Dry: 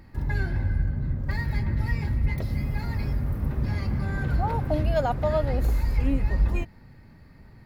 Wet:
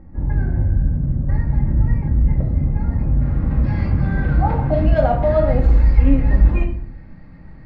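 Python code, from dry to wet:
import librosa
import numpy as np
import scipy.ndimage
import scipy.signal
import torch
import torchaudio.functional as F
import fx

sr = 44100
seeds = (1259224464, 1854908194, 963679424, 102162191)

y = fx.bessel_lowpass(x, sr, hz=fx.steps((0.0, 700.0), (3.2, 2300.0)), order=2)
y = fx.room_shoebox(y, sr, seeds[0], volume_m3=580.0, walls='furnished', distance_m=2.2)
y = y * librosa.db_to_amplitude(4.0)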